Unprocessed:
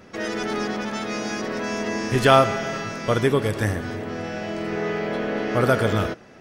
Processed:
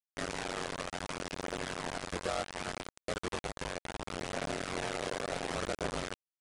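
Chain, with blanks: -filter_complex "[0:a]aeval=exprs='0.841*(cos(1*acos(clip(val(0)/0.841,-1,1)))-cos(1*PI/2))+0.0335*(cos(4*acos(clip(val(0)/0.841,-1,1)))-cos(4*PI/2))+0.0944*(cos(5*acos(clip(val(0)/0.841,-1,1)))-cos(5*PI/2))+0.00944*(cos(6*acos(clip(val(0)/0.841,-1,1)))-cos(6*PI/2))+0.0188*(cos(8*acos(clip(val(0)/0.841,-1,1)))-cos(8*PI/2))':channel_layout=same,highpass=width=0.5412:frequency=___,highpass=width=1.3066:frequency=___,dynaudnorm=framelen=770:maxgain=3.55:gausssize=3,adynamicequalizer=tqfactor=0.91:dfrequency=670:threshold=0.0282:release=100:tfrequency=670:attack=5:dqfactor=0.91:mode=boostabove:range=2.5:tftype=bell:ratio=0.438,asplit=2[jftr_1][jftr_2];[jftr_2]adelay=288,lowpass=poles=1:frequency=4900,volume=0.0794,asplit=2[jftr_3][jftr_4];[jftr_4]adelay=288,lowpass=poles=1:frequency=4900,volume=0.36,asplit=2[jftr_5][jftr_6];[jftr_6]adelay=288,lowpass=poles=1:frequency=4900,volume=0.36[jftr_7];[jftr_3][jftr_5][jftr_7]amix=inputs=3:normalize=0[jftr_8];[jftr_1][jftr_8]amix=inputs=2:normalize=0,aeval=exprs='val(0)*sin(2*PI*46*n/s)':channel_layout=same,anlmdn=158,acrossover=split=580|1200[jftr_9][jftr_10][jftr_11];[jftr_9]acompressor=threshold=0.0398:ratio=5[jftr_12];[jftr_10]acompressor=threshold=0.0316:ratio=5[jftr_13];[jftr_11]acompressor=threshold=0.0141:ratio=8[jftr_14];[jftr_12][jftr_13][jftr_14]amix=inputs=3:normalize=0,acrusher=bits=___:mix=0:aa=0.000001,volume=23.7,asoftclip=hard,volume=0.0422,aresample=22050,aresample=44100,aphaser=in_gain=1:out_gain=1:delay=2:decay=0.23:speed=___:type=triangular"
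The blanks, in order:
80, 80, 3, 0.68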